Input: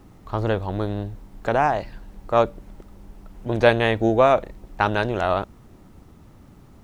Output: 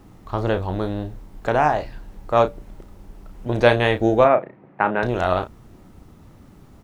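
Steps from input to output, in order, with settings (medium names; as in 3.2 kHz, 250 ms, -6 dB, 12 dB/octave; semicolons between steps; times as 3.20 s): 4.24–5.03 s: Chebyshev band-pass 140–2200 Hz, order 3; doubling 33 ms -9 dB; trim +1 dB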